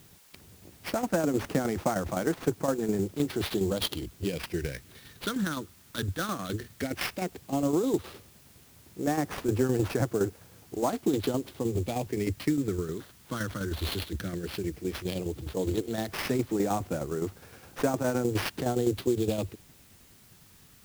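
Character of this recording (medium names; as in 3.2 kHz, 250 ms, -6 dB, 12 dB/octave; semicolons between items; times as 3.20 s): phasing stages 8, 0.13 Hz, lowest notch 720–4300 Hz; aliases and images of a low sample rate 7.5 kHz, jitter 20%; tremolo saw down 9.7 Hz, depth 60%; a quantiser's noise floor 10-bit, dither triangular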